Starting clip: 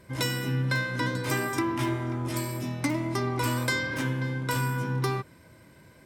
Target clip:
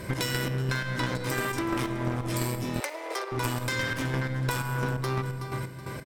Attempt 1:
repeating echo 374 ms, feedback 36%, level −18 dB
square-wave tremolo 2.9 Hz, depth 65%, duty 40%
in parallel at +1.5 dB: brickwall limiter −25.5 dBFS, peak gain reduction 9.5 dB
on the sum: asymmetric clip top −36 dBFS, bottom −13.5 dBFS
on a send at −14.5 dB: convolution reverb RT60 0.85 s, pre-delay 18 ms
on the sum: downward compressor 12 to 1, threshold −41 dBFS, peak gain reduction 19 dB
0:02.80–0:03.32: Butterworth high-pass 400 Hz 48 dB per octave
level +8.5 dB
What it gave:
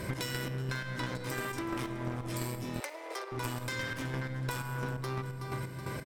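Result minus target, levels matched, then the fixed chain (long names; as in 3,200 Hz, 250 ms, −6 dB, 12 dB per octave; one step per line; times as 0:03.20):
downward compressor: peak gain reduction +7 dB
repeating echo 374 ms, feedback 36%, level −18 dB
square-wave tremolo 2.9 Hz, depth 65%, duty 40%
in parallel at +1.5 dB: brickwall limiter −25.5 dBFS, peak gain reduction 9.5 dB
on the sum: asymmetric clip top −36 dBFS, bottom −13.5 dBFS
on a send at −14.5 dB: convolution reverb RT60 0.85 s, pre-delay 18 ms
on the sum: downward compressor 12 to 1, threshold −33.5 dBFS, peak gain reduction 12 dB
0:02.80–0:03.32: Butterworth high-pass 400 Hz 48 dB per octave
level +8.5 dB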